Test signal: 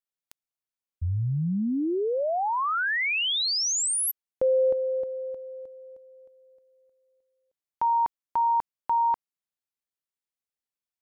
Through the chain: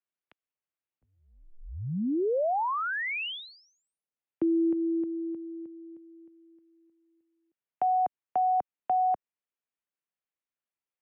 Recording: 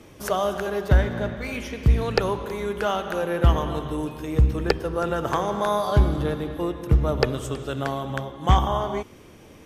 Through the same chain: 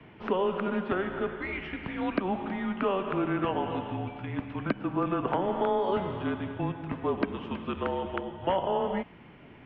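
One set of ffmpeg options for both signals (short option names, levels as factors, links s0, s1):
-filter_complex "[0:a]acrossover=split=170|400|930[s0][s1][s2][s3];[s0]acompressor=threshold=0.0251:ratio=4[s4];[s1]acompressor=threshold=0.0112:ratio=4[s5];[s2]acompressor=threshold=0.0501:ratio=4[s6];[s3]acompressor=threshold=0.0251:ratio=4[s7];[s4][s5][s6][s7]amix=inputs=4:normalize=0,highpass=f=310:t=q:w=0.5412,highpass=f=310:t=q:w=1.307,lowpass=f=3200:t=q:w=0.5176,lowpass=f=3200:t=q:w=0.7071,lowpass=f=3200:t=q:w=1.932,afreqshift=-190"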